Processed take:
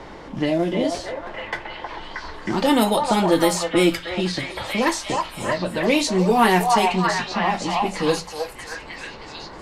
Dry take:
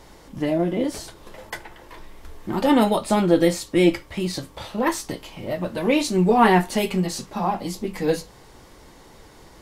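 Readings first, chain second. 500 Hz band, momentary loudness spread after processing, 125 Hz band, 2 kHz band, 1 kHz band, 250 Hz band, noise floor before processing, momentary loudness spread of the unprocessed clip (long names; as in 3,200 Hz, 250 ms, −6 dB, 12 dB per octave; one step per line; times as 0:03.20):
+1.0 dB, 16 LU, −0.5 dB, +4.5 dB, +3.5 dB, −0.5 dB, −49 dBFS, 18 LU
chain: hum removal 86.49 Hz, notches 3
low-pass that shuts in the quiet parts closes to 1,800 Hz, open at −13 dBFS
high-shelf EQ 3,400 Hz +11 dB
on a send: echo through a band-pass that steps 315 ms, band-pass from 850 Hz, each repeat 0.7 octaves, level −0.5 dB
on the sum: multiband upward and downward compressor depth 40%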